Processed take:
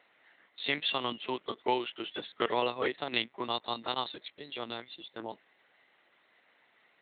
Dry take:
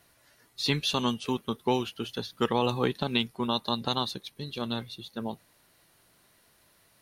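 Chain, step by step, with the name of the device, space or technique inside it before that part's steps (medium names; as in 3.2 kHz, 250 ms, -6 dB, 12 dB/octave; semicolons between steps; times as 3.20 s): talking toy (LPC vocoder at 8 kHz pitch kept; high-pass 350 Hz 12 dB/octave; peaking EQ 2 kHz +8 dB 0.34 oct); trim -1 dB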